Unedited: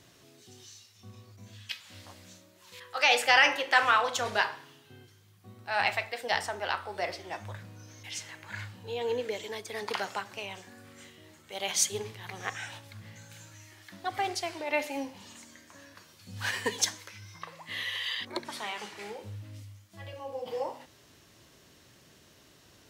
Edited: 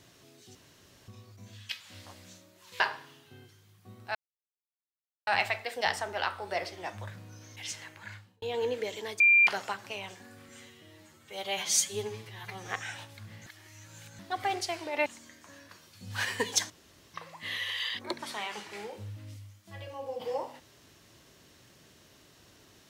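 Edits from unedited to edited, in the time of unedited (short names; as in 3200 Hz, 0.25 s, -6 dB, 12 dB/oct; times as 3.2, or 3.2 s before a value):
0.55–1.08 room tone
2.8–4.39 cut
5.74 insert silence 1.12 s
8.29–8.89 fade out
9.67–9.94 bleep 2380 Hz -17 dBFS
10.96–12.42 stretch 1.5×
13.2–13.93 reverse
14.8–15.32 cut
16.96–17.4 room tone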